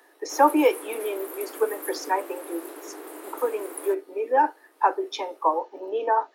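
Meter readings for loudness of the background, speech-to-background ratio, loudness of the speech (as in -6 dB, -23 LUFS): -39.0 LUFS, 13.0 dB, -26.0 LUFS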